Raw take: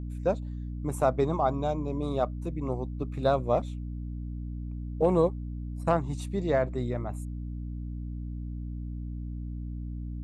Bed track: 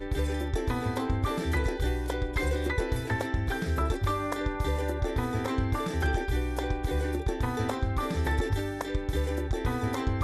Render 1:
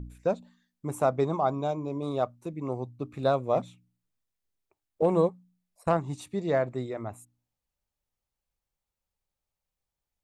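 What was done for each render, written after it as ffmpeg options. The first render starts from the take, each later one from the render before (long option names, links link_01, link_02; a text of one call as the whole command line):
ffmpeg -i in.wav -af "bandreject=frequency=60:width_type=h:width=4,bandreject=frequency=120:width_type=h:width=4,bandreject=frequency=180:width_type=h:width=4,bandreject=frequency=240:width_type=h:width=4,bandreject=frequency=300:width_type=h:width=4" out.wav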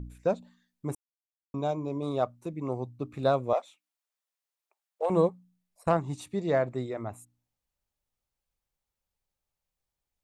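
ffmpeg -i in.wav -filter_complex "[0:a]asettb=1/sr,asplit=3[link_01][link_02][link_03];[link_01]atrim=end=3.534[link_04];[link_02]atrim=start=3.53:end=5.1,asetpts=PTS-STARTPTS,afade=type=in:duration=0.004:curve=qsin,afade=type=out:start_time=1.566:duration=0.004:curve=qsin,highpass=frequency=560:width=0.5412,highpass=frequency=560:width=1.3066[link_05];[link_03]atrim=start=5.096[link_06];[link_04][link_05]acrossfade=duration=0.004:curve1=hsin:curve2=qsin[link_07];[link_07][link_06]acrossfade=duration=0.004:curve1=qsin:curve2=hsin,asplit=3[link_08][link_09][link_10];[link_08]atrim=end=0.95,asetpts=PTS-STARTPTS,afade=type=out:start_time=0.946:duration=0.004:curve=hsin[link_11];[link_09]atrim=start=0.95:end=1.54,asetpts=PTS-STARTPTS,volume=0[link_12];[link_10]atrim=start=1.54,asetpts=PTS-STARTPTS,afade=type=in:duration=0.004:curve=hsin[link_13];[link_11][link_12][link_13]concat=n=3:v=0:a=1" out.wav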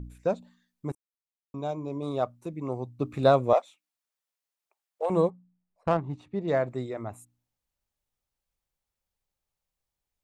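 ffmpeg -i in.wav -filter_complex "[0:a]asplit=3[link_01][link_02][link_03];[link_01]afade=type=out:start_time=2.98:duration=0.02[link_04];[link_02]acontrast=32,afade=type=in:start_time=2.98:duration=0.02,afade=type=out:start_time=3.58:duration=0.02[link_05];[link_03]afade=type=in:start_time=3.58:duration=0.02[link_06];[link_04][link_05][link_06]amix=inputs=3:normalize=0,asettb=1/sr,asplit=3[link_07][link_08][link_09];[link_07]atrim=end=5.304[link_10];[link_08]atrim=start=5.3:end=6.48,asetpts=PTS-STARTPTS,afade=type=in:duration=0.004:curve=qsin,afade=type=out:start_time=1.176:duration=0.004:curve=qsin,adynamicsmooth=sensitivity=4:basefreq=1800[link_11];[link_09]atrim=start=6.476[link_12];[link_10][link_11]acrossfade=duration=0.004:curve1=hsin:curve2=qsin[link_13];[link_13][link_12]acrossfade=duration=0.004:curve1=qsin:curve2=hsin,asplit=2[link_14][link_15];[link_14]atrim=end=0.92,asetpts=PTS-STARTPTS,afade=type=out:start_time=0.916:duration=0.004:curve=hsin:silence=0.0891251[link_16];[link_15]atrim=start=0.92,asetpts=PTS-STARTPTS,afade=type=in:duration=1.44:curve=qsin:silence=0.0891251[link_17];[link_16][link_17]concat=n=2:v=0:a=1" out.wav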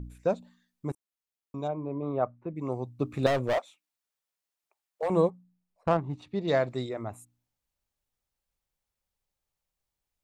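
ffmpeg -i in.wav -filter_complex "[0:a]asplit=3[link_01][link_02][link_03];[link_01]afade=type=out:start_time=1.67:duration=0.02[link_04];[link_02]lowpass=frequency=2200:width=0.5412,lowpass=frequency=2200:width=1.3066,afade=type=in:start_time=1.67:duration=0.02,afade=type=out:start_time=2.55:duration=0.02[link_05];[link_03]afade=type=in:start_time=2.55:duration=0.02[link_06];[link_04][link_05][link_06]amix=inputs=3:normalize=0,asettb=1/sr,asplit=3[link_07][link_08][link_09];[link_07]atrim=end=3.264[link_10];[link_08]atrim=start=3.26:end=5.08,asetpts=PTS-STARTPTS,afade=type=in:duration=0.004:curve=qsin,afade=type=out:start_time=1.816:duration=0.004:curve=qsin,volume=23dB,asoftclip=hard,volume=-23dB[link_11];[link_09]atrim=start=5.076[link_12];[link_10][link_11]acrossfade=duration=0.004:curve1=hsin:curve2=qsin[link_13];[link_13][link_12]acrossfade=duration=0.004:curve1=qsin:curve2=hsin,asettb=1/sr,asplit=3[link_14][link_15][link_16];[link_14]atrim=end=6.224[link_17];[link_15]atrim=start=6.22:end=6.89,asetpts=PTS-STARTPTS,afade=type=in:duration=0.004:curve=qsin,afade=type=out:start_time=0.666:duration=0.004:curve=qsin,equalizer=frequency=4300:width_type=o:width=1.3:gain=11[link_18];[link_16]atrim=start=6.886[link_19];[link_17][link_18]acrossfade=duration=0.004:curve1=hsin:curve2=qsin[link_20];[link_20][link_19]acrossfade=duration=0.004:curve1=qsin:curve2=hsin" out.wav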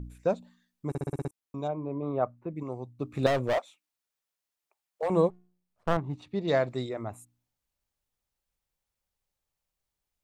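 ffmpeg -i in.wav -filter_complex "[0:a]asettb=1/sr,asplit=3[link_01][link_02][link_03];[link_01]atrim=end=5.304[link_04];[link_02]atrim=start=5.3:end=5.97,asetpts=PTS-STARTPTS,afade=type=in:duration=0.004:curve=qsin,afade=type=out:start_time=0.666:duration=0.004:curve=qsin,aeval=exprs='max(val(0),0)':channel_layout=same[link_05];[link_03]atrim=start=5.966[link_06];[link_04][link_05]acrossfade=duration=0.004:curve1=hsin:curve2=qsin[link_07];[link_07][link_06]acrossfade=duration=0.004:curve1=qsin:curve2=hsin,asplit=10[link_08][link_09][link_10][link_11][link_12][link_13][link_14][link_15][link_16][link_17];[link_08]atrim=end=0.952[link_18];[link_09]atrim=start=0.888:end=0.952[link_19];[link_10]atrim=start=0.888:end=0.952[link_20];[link_11]atrim=start=0.888:end=0.952[link_21];[link_12]atrim=start=0.888:end=0.952[link_22];[link_13]atrim=start=0.888:end=0.952[link_23];[link_14]atrim=start=0.888:end=0.952[link_24];[link_15]atrim=start=1.308:end=2.632[link_25];[link_16]atrim=start=2.628:end=3.152,asetpts=PTS-STARTPTS,volume=-4.5dB[link_26];[link_17]atrim=start=3.148[link_27];[link_18][link_19]acrossfade=duration=0.004:curve1=hsin:curve2=hsin[link_28];[link_28][link_20]acrossfade=duration=0.004:curve1=hsin:curve2=hsin[link_29];[link_29][link_21]acrossfade=duration=0.004:curve1=hsin:curve2=hsin[link_30];[link_30][link_22]acrossfade=duration=0.004:curve1=hsin:curve2=hsin[link_31];[link_31][link_23]acrossfade=duration=0.004:curve1=hsin:curve2=hsin[link_32];[link_32][link_24]acrossfade=duration=0.004:curve1=hsin:curve2=hsin[link_33];[link_33][link_25]acrossfade=duration=0.004:curve1=hsin:curve2=hsin[link_34];[link_34][link_26]acrossfade=duration=0.004:curve1=hsin:curve2=hsin[link_35];[link_35][link_27]acrossfade=duration=0.004:curve1=hsin:curve2=hsin" out.wav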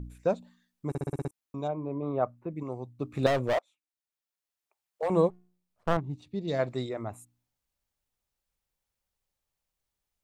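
ffmpeg -i in.wav -filter_complex "[0:a]asplit=3[link_01][link_02][link_03];[link_01]afade=type=out:start_time=5.99:duration=0.02[link_04];[link_02]equalizer=frequency=1200:width_type=o:width=2.4:gain=-12.5,afade=type=in:start_time=5.99:duration=0.02,afade=type=out:start_time=6.58:duration=0.02[link_05];[link_03]afade=type=in:start_time=6.58:duration=0.02[link_06];[link_04][link_05][link_06]amix=inputs=3:normalize=0,asplit=2[link_07][link_08];[link_07]atrim=end=3.59,asetpts=PTS-STARTPTS,afade=type=out:start_time=3.586:duration=0.004:curve=hsin:silence=0.105925[link_09];[link_08]atrim=start=3.59,asetpts=PTS-STARTPTS,afade=type=in:duration=1.48:silence=0.105925[link_10];[link_09][link_10]concat=n=2:v=0:a=1" out.wav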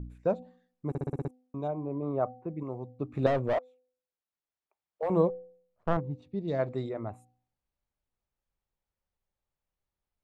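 ffmpeg -i in.wav -af "lowpass=frequency=1300:poles=1,bandreject=frequency=252.8:width_type=h:width=4,bandreject=frequency=505.6:width_type=h:width=4,bandreject=frequency=758.4:width_type=h:width=4" out.wav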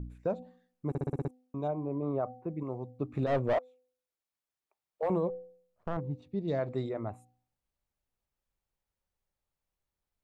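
ffmpeg -i in.wav -af "alimiter=limit=-21.5dB:level=0:latency=1:release=74" out.wav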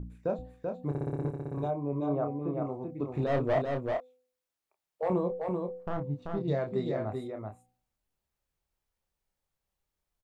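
ffmpeg -i in.wav -filter_complex "[0:a]asplit=2[link_01][link_02];[link_02]adelay=28,volume=-6dB[link_03];[link_01][link_03]amix=inputs=2:normalize=0,aecho=1:1:386:0.631" out.wav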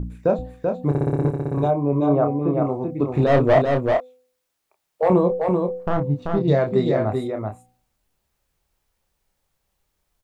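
ffmpeg -i in.wav -af "volume=12dB" out.wav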